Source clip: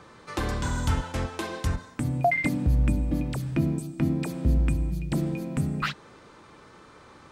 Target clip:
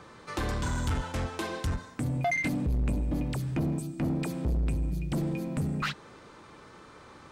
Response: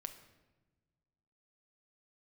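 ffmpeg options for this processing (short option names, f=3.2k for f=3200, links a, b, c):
-af "asoftclip=type=tanh:threshold=-24dB"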